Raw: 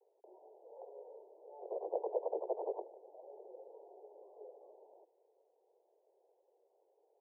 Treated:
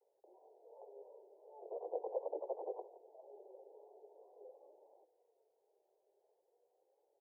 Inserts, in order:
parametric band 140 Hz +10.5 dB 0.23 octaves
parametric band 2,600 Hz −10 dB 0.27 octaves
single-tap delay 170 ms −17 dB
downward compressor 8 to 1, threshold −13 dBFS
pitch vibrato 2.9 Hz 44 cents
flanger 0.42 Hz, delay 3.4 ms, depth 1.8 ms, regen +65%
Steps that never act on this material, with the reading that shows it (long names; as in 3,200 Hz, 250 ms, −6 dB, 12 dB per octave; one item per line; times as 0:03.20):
parametric band 140 Hz: nothing at its input below 300 Hz
parametric band 2,600 Hz: nothing at its input above 1,000 Hz
downward compressor, threshold −13 dBFS: peak of its input −22.0 dBFS